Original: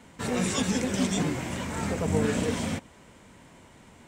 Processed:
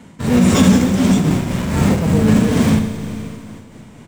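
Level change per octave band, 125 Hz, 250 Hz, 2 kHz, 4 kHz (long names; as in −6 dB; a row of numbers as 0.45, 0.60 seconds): +16.0, +15.5, +8.5, +8.5 decibels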